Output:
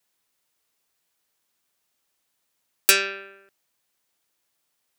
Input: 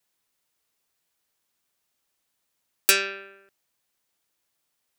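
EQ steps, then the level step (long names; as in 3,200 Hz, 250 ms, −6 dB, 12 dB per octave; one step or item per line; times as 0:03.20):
low-shelf EQ 140 Hz −3.5 dB
+2.0 dB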